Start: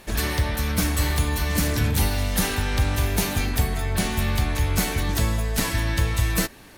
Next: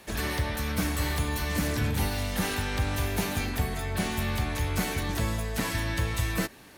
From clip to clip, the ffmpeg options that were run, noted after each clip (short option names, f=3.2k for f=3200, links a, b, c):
-filter_complex "[0:a]highpass=f=80:p=1,acrossover=split=270|440|2900[a][b][c][d];[d]alimiter=limit=-22dB:level=0:latency=1:release=138[e];[a][b][c][e]amix=inputs=4:normalize=0,volume=-3.5dB"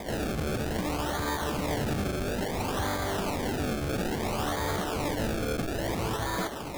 -filter_complex "[0:a]asplit=2[a][b];[b]highpass=f=720:p=1,volume=35dB,asoftclip=type=tanh:threshold=-14.5dB[c];[a][c]amix=inputs=2:normalize=0,lowpass=f=1.3k:p=1,volume=-6dB,acrusher=samples=31:mix=1:aa=0.000001:lfo=1:lforange=31:lforate=0.59,volume=-5.5dB"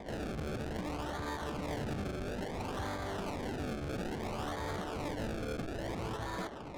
-af "adynamicsmooth=sensitivity=6:basefreq=1.3k,volume=-7.5dB"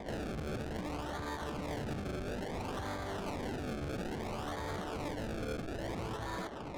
-af "alimiter=level_in=10.5dB:limit=-24dB:level=0:latency=1:release=182,volume=-10.5dB,volume=2dB"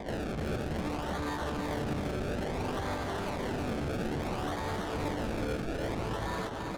-filter_complex "[0:a]aecho=1:1:324:0.531,acrossover=split=2100[a][b];[b]aeval=exprs='clip(val(0),-1,0.00473)':c=same[c];[a][c]amix=inputs=2:normalize=0,volume=4dB"